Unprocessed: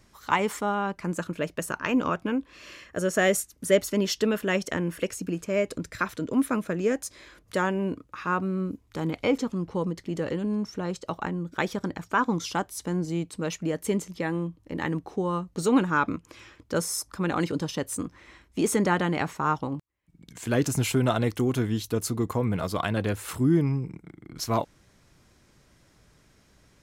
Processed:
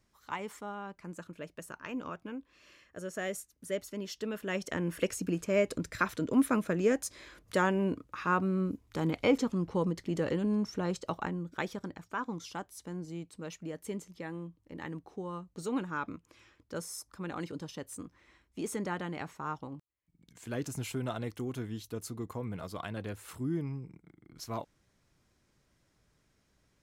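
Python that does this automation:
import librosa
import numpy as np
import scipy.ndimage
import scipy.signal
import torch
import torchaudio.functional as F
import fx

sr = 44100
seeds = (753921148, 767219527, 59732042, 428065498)

y = fx.gain(x, sr, db=fx.line((4.13, -14.0), (5.04, -2.0), (10.98, -2.0), (12.09, -12.0)))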